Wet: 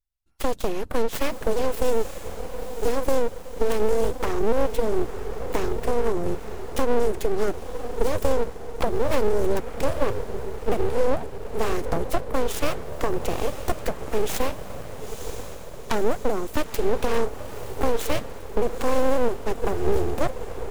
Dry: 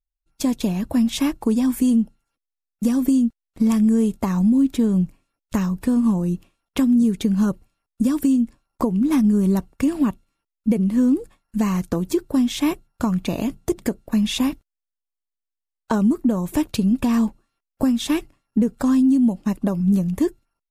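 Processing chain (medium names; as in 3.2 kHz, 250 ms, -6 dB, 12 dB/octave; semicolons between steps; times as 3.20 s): self-modulated delay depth 0.49 ms; echo that smears into a reverb 956 ms, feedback 59%, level -10 dB; full-wave rectifier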